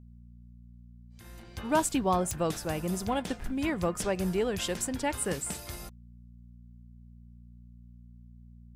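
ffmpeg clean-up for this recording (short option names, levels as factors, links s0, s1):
-af "adeclick=t=4,bandreject=f=59.3:t=h:w=4,bandreject=f=118.6:t=h:w=4,bandreject=f=177.9:t=h:w=4,bandreject=f=237.2:t=h:w=4"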